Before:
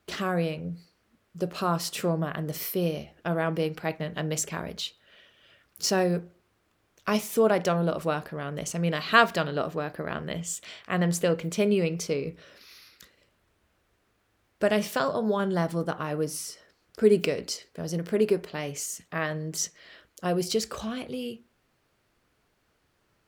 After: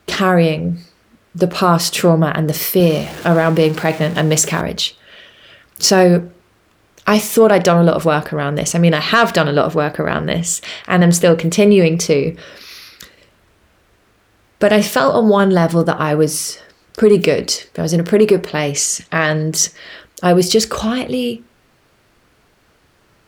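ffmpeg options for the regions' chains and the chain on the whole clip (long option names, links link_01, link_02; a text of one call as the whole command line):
ffmpeg -i in.wav -filter_complex "[0:a]asettb=1/sr,asplit=3[link_01][link_02][link_03];[link_01]atrim=end=2.804[link_04];[link_02]atrim=start=2.8:end=4.61,asetpts=PTS-STARTPTS,afade=type=in:duration=0.004:curve=qsin,afade=type=out:start_time=1.806:duration=0.004:curve=qsin,aeval=exprs='val(0)+0.5*0.00944*sgn(val(0))':channel_layout=same,highpass=92[link_05];[link_03]atrim=start=4.606[link_06];[link_04][link_05]acrossfade=duration=0.004:curve1=hsin:curve2=qsin[link_07];[link_07][link_06]acrossfade=duration=0.004:curve1=qsin:curve2=hsin,asettb=1/sr,asplit=3[link_08][link_09][link_10];[link_08]atrim=end=18.744[link_11];[link_09]atrim=start=18.74:end=19.43,asetpts=PTS-STARTPTS,afade=type=in:duration=0.004:curve=qsin,afade=type=out:start_time=0.686:duration=0.004:curve=qsin,lowpass=4800,aemphasis=mode=production:type=75kf[link_12];[link_10]atrim=start=19.426[link_13];[link_11][link_12]acrossfade=duration=0.004:curve1=hsin:curve2=qsin[link_14];[link_14][link_13]acrossfade=duration=0.004:curve1=qsin:curve2=hsin,highshelf=frequency=12000:gain=-3.5,acontrast=76,alimiter=level_in=9.5dB:limit=-1dB:release=50:level=0:latency=1,volume=-1dB" out.wav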